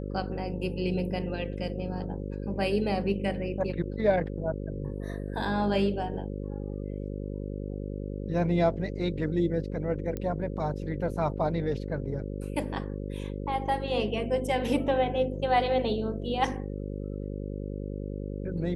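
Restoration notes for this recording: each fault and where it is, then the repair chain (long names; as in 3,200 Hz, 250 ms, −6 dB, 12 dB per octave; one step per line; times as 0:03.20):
mains buzz 50 Hz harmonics 11 −35 dBFS
0:10.17: click −21 dBFS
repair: click removal
hum removal 50 Hz, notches 11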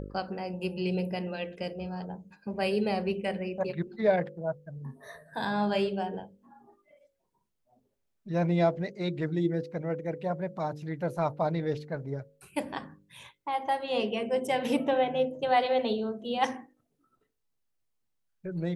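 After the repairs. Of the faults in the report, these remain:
none of them is left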